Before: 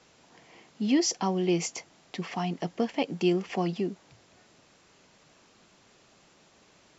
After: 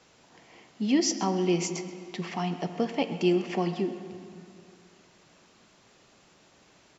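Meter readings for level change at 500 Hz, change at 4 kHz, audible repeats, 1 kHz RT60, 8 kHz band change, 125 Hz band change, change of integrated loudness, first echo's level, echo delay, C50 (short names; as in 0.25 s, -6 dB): +1.0 dB, +0.5 dB, 1, 2.4 s, n/a, +0.5 dB, +0.5 dB, -17.5 dB, 0.13 s, 9.0 dB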